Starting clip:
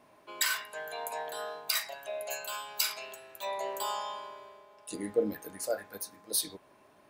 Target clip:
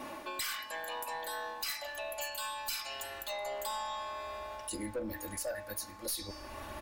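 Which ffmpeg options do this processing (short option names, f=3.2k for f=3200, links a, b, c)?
-filter_complex "[0:a]bandreject=f=630:w=17,aecho=1:1:3.6:0.83,bandreject=f=295.3:t=h:w=4,bandreject=f=590.6:t=h:w=4,bandreject=f=885.9:t=h:w=4,bandreject=f=1.1812k:t=h:w=4,bandreject=f=1.4765k:t=h:w=4,bandreject=f=1.7718k:t=h:w=4,bandreject=f=2.0671k:t=h:w=4,bandreject=f=2.3624k:t=h:w=4,bandreject=f=2.6577k:t=h:w=4,bandreject=f=2.953k:t=h:w=4,bandreject=f=3.2483k:t=h:w=4,bandreject=f=3.5436k:t=h:w=4,bandreject=f=3.8389k:t=h:w=4,bandreject=f=4.1342k:t=h:w=4,bandreject=f=4.4295k:t=h:w=4,bandreject=f=4.7248k:t=h:w=4,bandreject=f=5.0201k:t=h:w=4,bandreject=f=5.3154k:t=h:w=4,bandreject=f=5.6107k:t=h:w=4,bandreject=f=5.906k:t=h:w=4,bandreject=f=6.2013k:t=h:w=4,bandreject=f=6.4966k:t=h:w=4,bandreject=f=6.7919k:t=h:w=4,bandreject=f=7.0872k:t=h:w=4,bandreject=f=7.3825k:t=h:w=4,bandreject=f=7.6778k:t=h:w=4,bandreject=f=7.9731k:t=h:w=4,bandreject=f=8.2684k:t=h:w=4,asplit=2[a][b];[b]volume=26dB,asoftclip=hard,volume=-26dB,volume=-3dB[c];[a][c]amix=inputs=2:normalize=0,asubboost=boost=11.5:cutoff=72,acompressor=threshold=-50dB:ratio=2.5,aeval=exprs='0.0473*(cos(1*acos(clip(val(0)/0.0473,-1,1)))-cos(1*PI/2))+0.00473*(cos(4*acos(clip(val(0)/0.0473,-1,1)))-cos(4*PI/2))+0.0119*(cos(5*acos(clip(val(0)/0.0473,-1,1)))-cos(5*PI/2))':c=same,areverse,acompressor=mode=upward:threshold=-36dB:ratio=2.5,areverse,asetrate=45938,aresample=44100"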